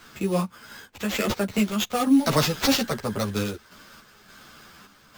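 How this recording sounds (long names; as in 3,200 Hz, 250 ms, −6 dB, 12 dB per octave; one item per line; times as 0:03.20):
aliases and images of a low sample rate 10,000 Hz, jitter 0%
sample-and-hold tremolo
a shimmering, thickened sound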